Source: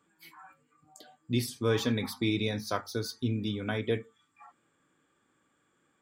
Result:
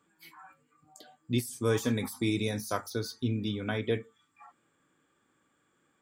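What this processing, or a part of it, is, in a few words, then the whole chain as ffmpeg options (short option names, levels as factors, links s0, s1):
de-esser from a sidechain: -filter_complex "[0:a]asettb=1/sr,asplit=3[s0][s1][s2];[s0]atrim=end=1.384[s3];[s1]atrim=start=1.38:end=2.9,asetpts=PTS-STARTPTS,afade=t=in:d=0.004:c=qsin,afade=t=out:st=1.516:d=0.004:c=qsin,highshelf=f=5700:t=q:w=1.5:g=11.5[s4];[s2]atrim=start=2.896[s5];[s3][s4]acrossfade=d=0.004:c1=hsin:c2=qsin[s6];[s6][s5]acrossfade=d=0.004:c1=qsin:c2=hsin,asplit=2[s7][s8];[s8]highpass=6500,apad=whole_len=265059[s9];[s7][s9]sidechaincompress=threshold=0.00891:ratio=5:attack=2.7:release=23"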